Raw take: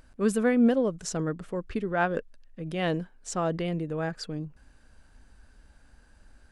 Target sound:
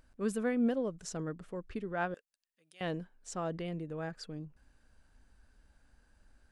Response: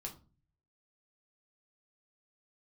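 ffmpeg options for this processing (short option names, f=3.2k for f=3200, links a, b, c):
-filter_complex "[0:a]asettb=1/sr,asplit=3[a][b][c];[a]atrim=end=2.144[d];[b]atrim=start=2.14:end=2.81,asetpts=PTS-STARTPTS,afade=t=in:d=0.004:c=qsin,afade=t=out:st=0.666:d=0.004:c=qsin,aderivative[e];[c]atrim=start=2.806[f];[d][e]acrossfade=d=0.004:c1=hsin:c2=qsin[g];[g][f]acrossfade=d=0.004:c1=qsin:c2=hsin,volume=-8.5dB"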